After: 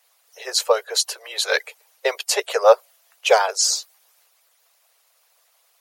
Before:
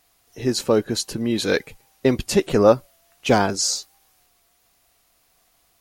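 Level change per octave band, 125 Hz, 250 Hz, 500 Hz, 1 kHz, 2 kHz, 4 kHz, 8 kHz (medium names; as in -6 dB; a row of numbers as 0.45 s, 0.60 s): under -40 dB, under -25 dB, 0.0 dB, +3.5 dB, +4.0 dB, +4.5 dB, +4.0 dB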